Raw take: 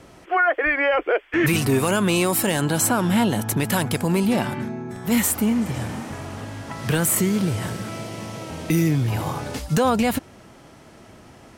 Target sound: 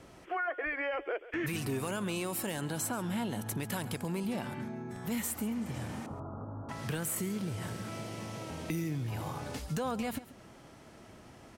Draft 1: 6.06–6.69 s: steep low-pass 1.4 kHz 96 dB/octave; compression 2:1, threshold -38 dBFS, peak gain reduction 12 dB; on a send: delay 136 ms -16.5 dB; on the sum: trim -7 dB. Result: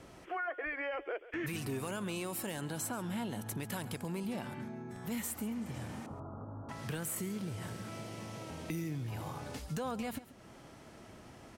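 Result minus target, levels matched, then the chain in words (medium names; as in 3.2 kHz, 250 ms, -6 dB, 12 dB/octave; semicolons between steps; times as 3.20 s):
compression: peak gain reduction +3.5 dB
6.06–6.69 s: steep low-pass 1.4 kHz 96 dB/octave; compression 2:1, threshold -31 dBFS, peak gain reduction 8.5 dB; on a send: delay 136 ms -16.5 dB; on the sum: trim -7 dB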